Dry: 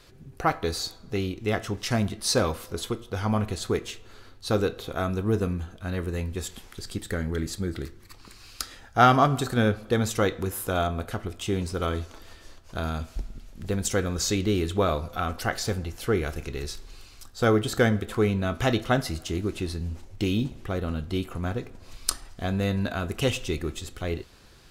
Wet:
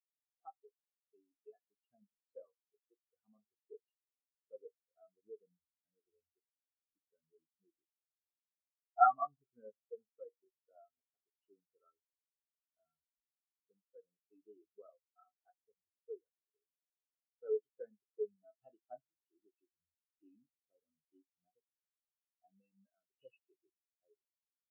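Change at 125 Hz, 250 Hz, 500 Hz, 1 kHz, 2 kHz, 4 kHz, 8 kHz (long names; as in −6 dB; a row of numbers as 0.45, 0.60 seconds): below −40 dB, below −40 dB, −20.0 dB, −11.0 dB, below −25 dB, below −40 dB, below −40 dB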